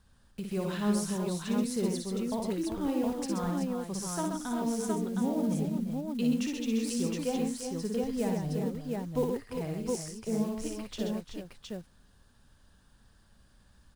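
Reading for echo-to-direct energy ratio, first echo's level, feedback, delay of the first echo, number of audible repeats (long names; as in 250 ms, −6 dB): 1.5 dB, −4.5 dB, repeats not evenly spaced, 58 ms, 5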